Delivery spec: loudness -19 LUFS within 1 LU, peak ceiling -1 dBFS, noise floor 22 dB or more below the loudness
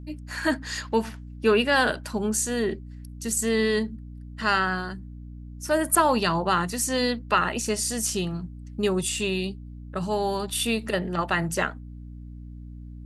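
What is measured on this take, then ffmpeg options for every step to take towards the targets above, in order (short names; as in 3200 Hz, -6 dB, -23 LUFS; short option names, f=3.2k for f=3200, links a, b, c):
hum 60 Hz; harmonics up to 300 Hz; hum level -38 dBFS; loudness -25.5 LUFS; peak -6.5 dBFS; loudness target -19.0 LUFS
-> -af "bandreject=f=60:t=h:w=4,bandreject=f=120:t=h:w=4,bandreject=f=180:t=h:w=4,bandreject=f=240:t=h:w=4,bandreject=f=300:t=h:w=4"
-af "volume=6.5dB,alimiter=limit=-1dB:level=0:latency=1"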